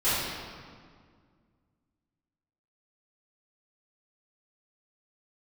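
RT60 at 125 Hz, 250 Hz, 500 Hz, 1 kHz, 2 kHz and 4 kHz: 2.6, 2.6, 2.0, 1.9, 1.6, 1.3 s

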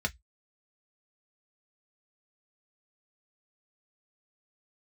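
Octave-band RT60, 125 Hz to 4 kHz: 0.20, 0.10, 0.05, 0.10, 0.15, 0.15 s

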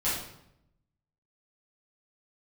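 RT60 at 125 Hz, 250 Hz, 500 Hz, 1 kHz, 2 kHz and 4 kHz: 1.2, 1.0, 0.85, 0.75, 0.65, 0.60 s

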